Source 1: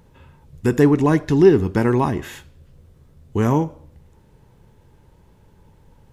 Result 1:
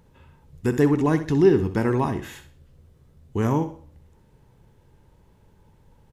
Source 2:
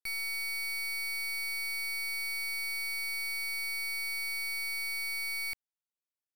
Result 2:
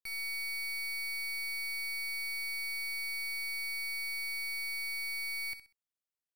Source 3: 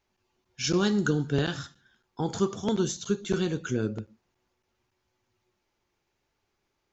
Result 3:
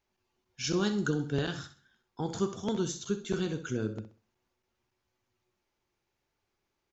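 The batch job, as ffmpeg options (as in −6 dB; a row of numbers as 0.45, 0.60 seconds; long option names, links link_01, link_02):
-af "aecho=1:1:64|128|192:0.251|0.0779|0.0241,volume=-4.5dB"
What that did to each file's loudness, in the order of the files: −4.0, −2.0, −4.5 LU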